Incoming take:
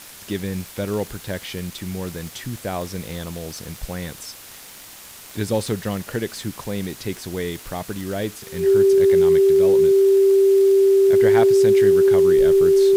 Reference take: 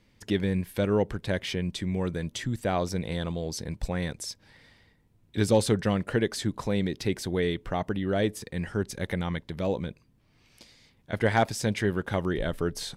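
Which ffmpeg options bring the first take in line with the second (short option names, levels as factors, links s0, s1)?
-af "adeclick=t=4,bandreject=f=390:w=30,afwtdn=0.01"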